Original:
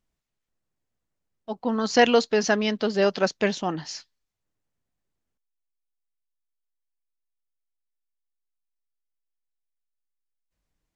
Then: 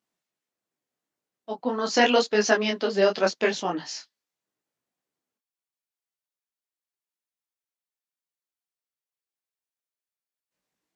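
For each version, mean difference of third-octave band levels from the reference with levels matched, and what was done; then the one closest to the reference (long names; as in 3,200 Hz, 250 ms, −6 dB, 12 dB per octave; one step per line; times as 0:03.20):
3.0 dB: high-pass filter 240 Hz 12 dB per octave
micro pitch shift up and down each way 29 cents
level +4.5 dB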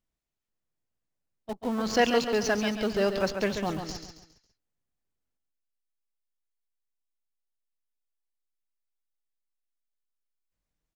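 8.5 dB: in parallel at −5 dB: comparator with hysteresis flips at −28.5 dBFS
on the sum: repeating echo 137 ms, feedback 39%, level −7.5 dB
level −6 dB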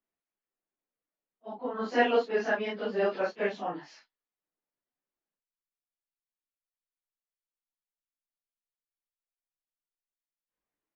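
5.0 dB: random phases in long frames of 100 ms
three-way crossover with the lows and the highs turned down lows −20 dB, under 230 Hz, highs −20 dB, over 3,000 Hz
level −5.5 dB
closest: first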